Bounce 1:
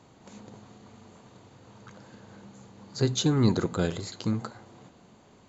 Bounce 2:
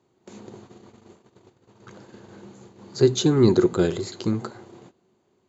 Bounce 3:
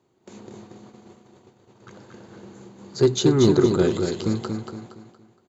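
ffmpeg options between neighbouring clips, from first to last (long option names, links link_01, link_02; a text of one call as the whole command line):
ffmpeg -i in.wav -af "highpass=67,equalizer=frequency=370:width_type=o:width=0.29:gain=13.5,agate=range=-16dB:threshold=-48dB:ratio=16:detection=peak,volume=2.5dB" out.wav
ffmpeg -i in.wav -filter_complex "[0:a]asoftclip=type=hard:threshold=-9dB,asplit=2[link_01][link_02];[link_02]aecho=0:1:233|466|699|932:0.531|0.196|0.0727|0.0269[link_03];[link_01][link_03]amix=inputs=2:normalize=0" out.wav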